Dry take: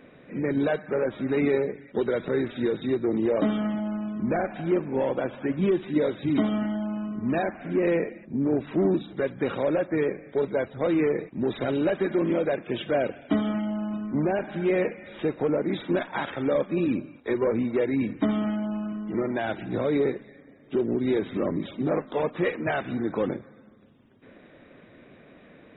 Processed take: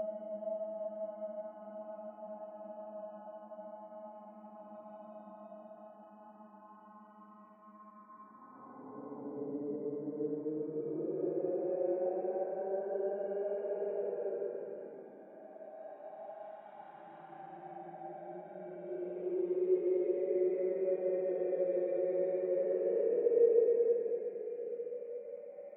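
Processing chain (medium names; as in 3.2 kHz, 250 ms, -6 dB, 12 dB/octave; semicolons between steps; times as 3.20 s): auto-wah 460–2300 Hz, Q 8.5, down, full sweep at -23.5 dBFS; Paulstretch 20×, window 0.10 s, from 13.69 s; trim +1 dB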